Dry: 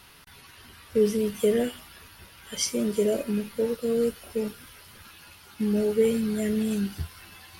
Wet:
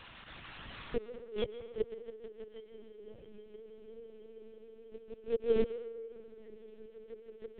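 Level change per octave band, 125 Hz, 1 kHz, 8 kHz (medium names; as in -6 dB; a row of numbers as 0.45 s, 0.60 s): -18.5 dB, -10.0 dB, under -40 dB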